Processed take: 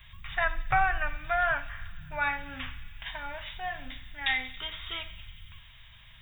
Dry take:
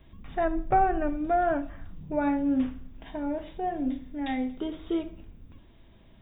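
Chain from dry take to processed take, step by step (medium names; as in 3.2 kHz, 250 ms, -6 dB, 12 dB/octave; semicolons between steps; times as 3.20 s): FFT filter 130 Hz 0 dB, 320 Hz -29 dB, 1.1 kHz +5 dB, 2 kHz +12 dB; feedback echo behind a high-pass 92 ms, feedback 83%, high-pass 3 kHz, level -14 dB; trim +1 dB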